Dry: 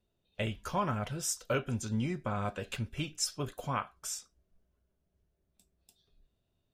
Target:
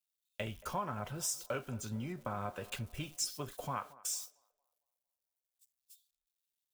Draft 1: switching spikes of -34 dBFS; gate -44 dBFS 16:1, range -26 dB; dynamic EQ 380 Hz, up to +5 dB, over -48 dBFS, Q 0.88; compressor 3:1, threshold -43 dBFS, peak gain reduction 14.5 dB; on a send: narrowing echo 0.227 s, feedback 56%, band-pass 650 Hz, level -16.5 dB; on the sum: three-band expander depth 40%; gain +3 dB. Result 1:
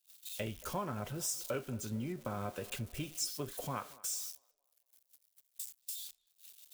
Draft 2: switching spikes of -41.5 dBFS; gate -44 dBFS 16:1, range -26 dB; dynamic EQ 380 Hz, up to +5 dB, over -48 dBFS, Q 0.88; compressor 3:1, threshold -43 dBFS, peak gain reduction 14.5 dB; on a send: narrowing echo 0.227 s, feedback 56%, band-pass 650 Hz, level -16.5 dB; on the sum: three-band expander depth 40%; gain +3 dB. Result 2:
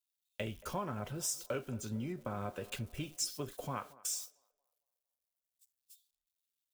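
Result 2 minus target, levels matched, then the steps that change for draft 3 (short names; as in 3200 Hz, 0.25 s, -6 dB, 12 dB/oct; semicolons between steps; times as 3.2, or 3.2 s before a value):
1000 Hz band -3.0 dB
change: dynamic EQ 930 Hz, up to +5 dB, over -48 dBFS, Q 0.88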